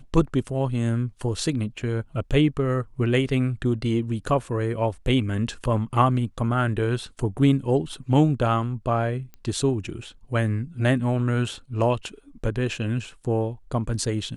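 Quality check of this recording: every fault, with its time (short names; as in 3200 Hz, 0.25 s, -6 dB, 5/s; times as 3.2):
9.34 pop -28 dBFS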